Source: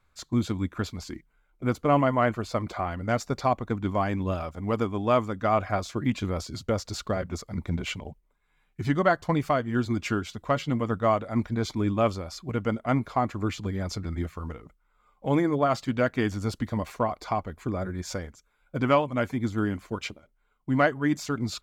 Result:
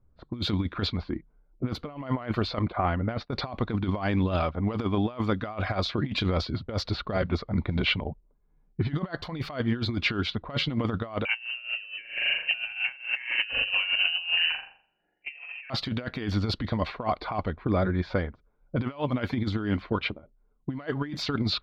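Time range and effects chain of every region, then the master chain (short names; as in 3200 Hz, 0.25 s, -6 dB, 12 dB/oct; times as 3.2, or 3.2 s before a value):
2.59–3.32 expander -35 dBFS + air absorption 280 m
11.25–15.7 inverted band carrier 2900 Hz + flutter echo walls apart 7.2 m, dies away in 0.77 s
whole clip: low-pass opened by the level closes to 370 Hz, open at -23 dBFS; resonant high shelf 5500 Hz -11 dB, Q 3; negative-ratio compressor -29 dBFS, ratio -0.5; gain +1.5 dB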